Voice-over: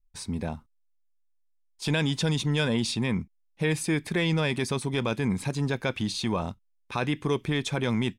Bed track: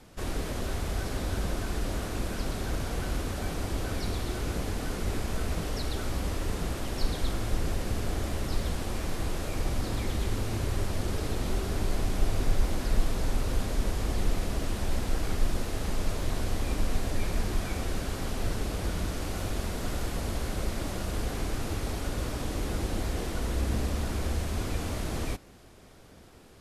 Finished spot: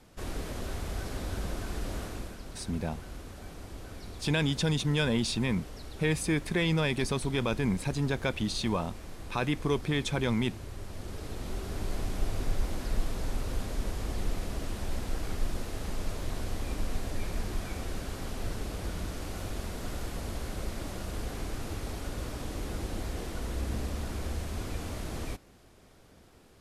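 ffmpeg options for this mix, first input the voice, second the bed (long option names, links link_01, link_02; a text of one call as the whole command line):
ffmpeg -i stem1.wav -i stem2.wav -filter_complex "[0:a]adelay=2400,volume=-2dB[link_01];[1:a]volume=3.5dB,afade=type=out:start_time=2.02:duration=0.37:silence=0.398107,afade=type=in:start_time=10.79:duration=1.19:silence=0.421697[link_02];[link_01][link_02]amix=inputs=2:normalize=0" out.wav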